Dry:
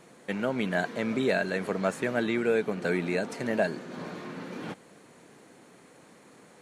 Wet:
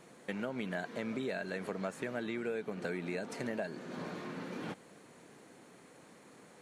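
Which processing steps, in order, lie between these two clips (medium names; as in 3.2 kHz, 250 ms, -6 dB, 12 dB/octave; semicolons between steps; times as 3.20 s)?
compression 4:1, threshold -32 dBFS, peak gain reduction 10 dB; trim -3 dB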